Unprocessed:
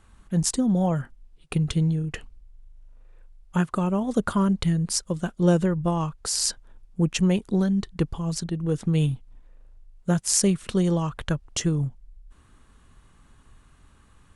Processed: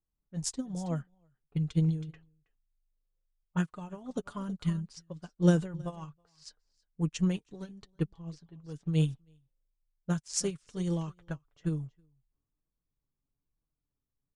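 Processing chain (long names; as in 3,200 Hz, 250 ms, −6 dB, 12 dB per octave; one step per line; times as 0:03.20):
low-pass filter 6,800 Hz 12 dB per octave
low-pass that shuts in the quiet parts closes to 560 Hz, open at −19.5 dBFS
high-shelf EQ 5,300 Hz +12 dB
transient designer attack +1 dB, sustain +6 dB
flanger 1.1 Hz, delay 6.1 ms, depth 1.5 ms, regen +35%
on a send: single-tap delay 322 ms −14.5 dB
on the sum: expander for the loud parts 2.5 to 1, over −37 dBFS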